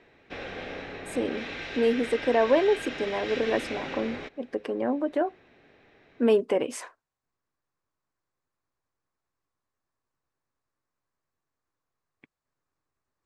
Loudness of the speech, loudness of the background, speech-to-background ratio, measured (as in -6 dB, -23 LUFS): -27.5 LUFS, -36.5 LUFS, 9.0 dB